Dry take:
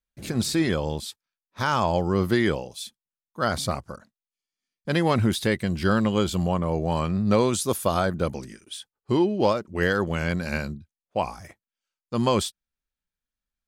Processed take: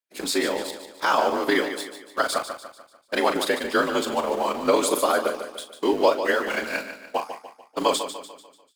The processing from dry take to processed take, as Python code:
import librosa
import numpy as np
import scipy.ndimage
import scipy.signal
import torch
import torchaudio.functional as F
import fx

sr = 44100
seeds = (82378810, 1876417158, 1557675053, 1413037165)

p1 = x * np.sin(2.0 * np.pi * 50.0 * np.arange(len(x)) / sr)
p2 = fx.notch(p1, sr, hz=5900.0, q=12.0)
p3 = fx.stretch_vocoder(p2, sr, factor=0.64)
p4 = scipy.signal.sosfilt(scipy.signal.bessel(6, 420.0, 'highpass', norm='mag', fs=sr, output='sos'), p3)
p5 = np.where(np.abs(p4) >= 10.0 ** (-36.5 / 20.0), p4, 0.0)
p6 = p4 + F.gain(torch.from_numpy(p5), -3.0).numpy()
p7 = fx.doubler(p6, sr, ms=39.0, db=-10.0)
p8 = fx.echo_feedback(p7, sr, ms=147, feedback_pct=45, wet_db=-10.0)
y = F.gain(torch.from_numpy(p8), 3.0).numpy()